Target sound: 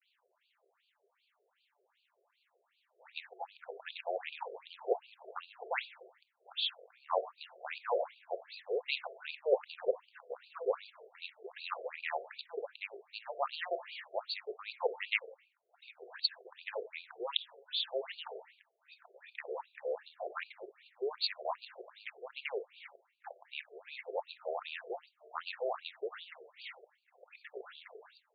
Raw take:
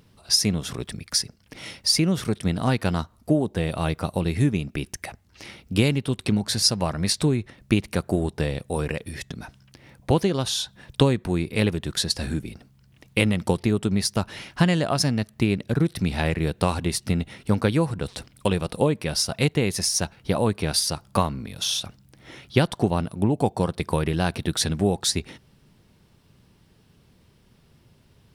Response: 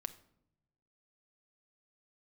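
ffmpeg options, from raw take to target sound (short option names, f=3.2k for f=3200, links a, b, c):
-filter_complex "[0:a]areverse,acrusher=bits=8:mode=log:mix=0:aa=0.000001,bandreject=f=223.2:t=h:w=4,bandreject=f=446.4:t=h:w=4,bandreject=f=669.6:t=h:w=4,bandreject=f=892.8:t=h:w=4[a];[1:a]atrim=start_sample=2205,afade=t=out:st=0.39:d=0.01,atrim=end_sample=17640[b];[a][b]afir=irnorm=-1:irlink=0,afftfilt=real='re*between(b*sr/1024,500*pow(3400/500,0.5+0.5*sin(2*PI*2.6*pts/sr))/1.41,500*pow(3400/500,0.5+0.5*sin(2*PI*2.6*pts/sr))*1.41)':imag='im*between(b*sr/1024,500*pow(3400/500,0.5+0.5*sin(2*PI*2.6*pts/sr))/1.41,500*pow(3400/500,0.5+0.5*sin(2*PI*2.6*pts/sr))*1.41)':win_size=1024:overlap=0.75,volume=-2.5dB"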